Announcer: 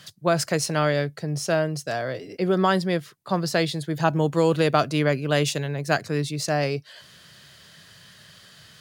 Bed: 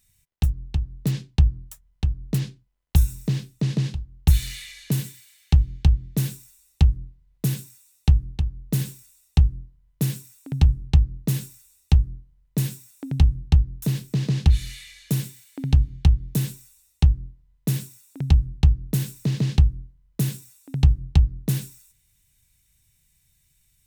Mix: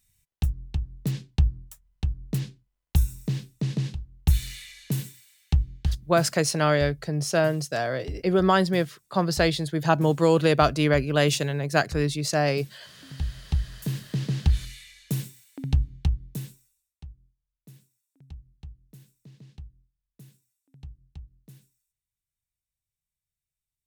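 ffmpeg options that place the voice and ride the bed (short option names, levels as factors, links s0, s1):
-filter_complex "[0:a]adelay=5850,volume=1.06[s0];[1:a]volume=3.35,afade=t=out:st=5.39:d=0.98:silence=0.177828,afade=t=in:st=13:d=1.05:silence=0.188365,afade=t=out:st=15.65:d=1.31:silence=0.0794328[s1];[s0][s1]amix=inputs=2:normalize=0"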